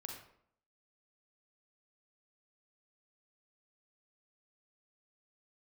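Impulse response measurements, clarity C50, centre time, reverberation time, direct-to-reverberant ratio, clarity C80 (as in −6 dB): 3.0 dB, 39 ms, 0.65 s, 0.5 dB, 7.0 dB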